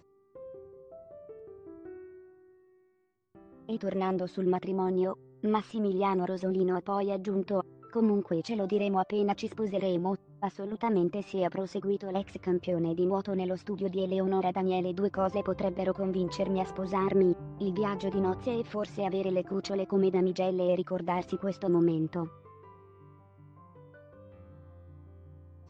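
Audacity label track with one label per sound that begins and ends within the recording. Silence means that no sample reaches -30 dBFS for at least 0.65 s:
3.690000	22.240000	sound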